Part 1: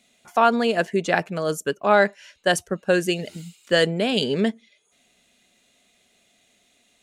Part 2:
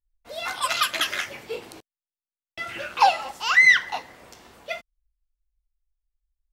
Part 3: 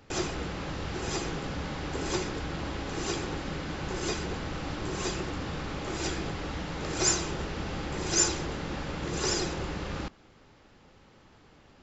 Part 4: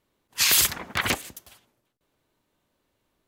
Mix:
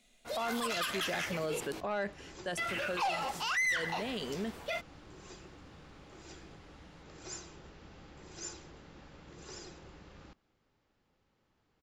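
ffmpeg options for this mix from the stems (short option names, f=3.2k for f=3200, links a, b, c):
-filter_complex "[0:a]volume=-6dB,afade=t=out:st=2.13:d=0.44:silence=0.354813[a];[1:a]volume=0.5dB[b];[2:a]adelay=250,volume=-19dB[c];[3:a]alimiter=limit=-13dB:level=0:latency=1,volume=-18.5dB[d];[a][b][c][d]amix=inputs=4:normalize=0,asoftclip=type=tanh:threshold=-16dB,alimiter=level_in=3.5dB:limit=-24dB:level=0:latency=1:release=22,volume=-3.5dB"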